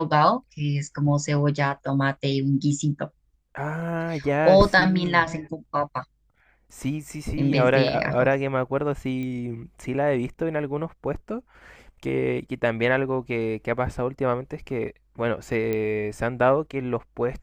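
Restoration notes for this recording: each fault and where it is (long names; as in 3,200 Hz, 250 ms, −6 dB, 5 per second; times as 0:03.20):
0:09.23: click −22 dBFS
0:15.73: click −15 dBFS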